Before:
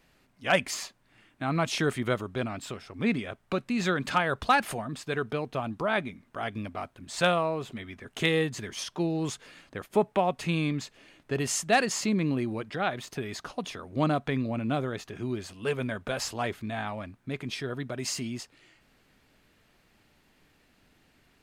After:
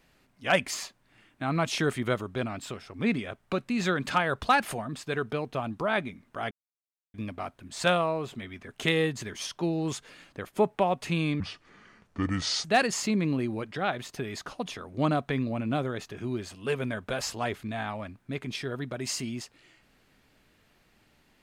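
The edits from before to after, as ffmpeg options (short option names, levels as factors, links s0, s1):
-filter_complex "[0:a]asplit=4[s0][s1][s2][s3];[s0]atrim=end=6.51,asetpts=PTS-STARTPTS,afade=t=out:st=6.506:d=0.004:c=hsin,apad=pad_dur=0.63[s4];[s1]atrim=start=6.51:end=10.774,asetpts=PTS-STARTPTS,afade=t=in:d=0.004:c=hsin[s5];[s2]atrim=start=10.77:end=11.63,asetpts=PTS-STARTPTS,asetrate=30429,aresample=44100,atrim=end_sample=54965,asetpts=PTS-STARTPTS[s6];[s3]atrim=start=11.626[s7];[s4][s5]concat=n=2:v=0:a=1[s8];[s8][s6]acrossfade=d=0.004:c1=hsin:c2=hsin[s9];[s9][s7]acrossfade=d=0.004:c1=hsin:c2=hsin"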